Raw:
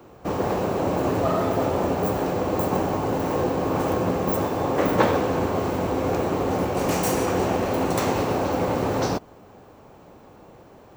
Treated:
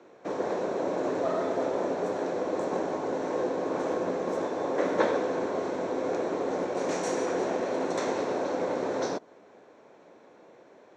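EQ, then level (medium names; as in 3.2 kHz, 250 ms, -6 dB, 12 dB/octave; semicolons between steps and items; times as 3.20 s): dynamic bell 2.4 kHz, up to -5 dB, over -44 dBFS, Q 1.4; cabinet simulation 300–6000 Hz, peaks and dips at 810 Hz -7 dB, 1.2 kHz -8 dB, 2.9 kHz -9 dB, 4.8 kHz -9 dB; bass shelf 490 Hz -5 dB; 0.0 dB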